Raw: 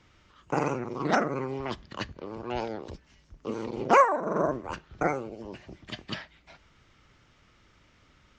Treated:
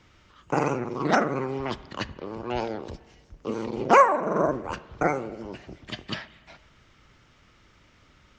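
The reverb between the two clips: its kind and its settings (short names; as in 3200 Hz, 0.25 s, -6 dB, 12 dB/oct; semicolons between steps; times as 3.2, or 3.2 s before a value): spring tank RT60 1.5 s, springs 41/59 ms, chirp 50 ms, DRR 17 dB; gain +3 dB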